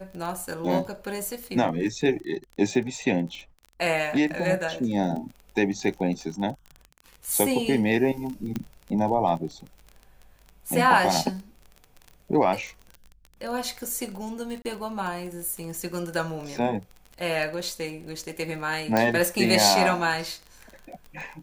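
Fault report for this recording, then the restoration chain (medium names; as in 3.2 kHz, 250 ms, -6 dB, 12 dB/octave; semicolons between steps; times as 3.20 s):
crackle 32 per s -33 dBFS
8.56 s: pop -16 dBFS
14.62–14.65 s: dropout 29 ms
18.97 s: pop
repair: de-click; interpolate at 14.62 s, 29 ms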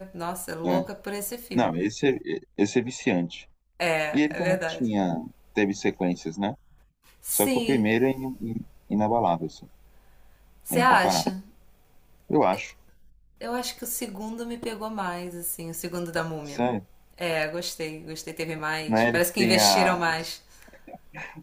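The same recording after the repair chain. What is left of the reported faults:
nothing left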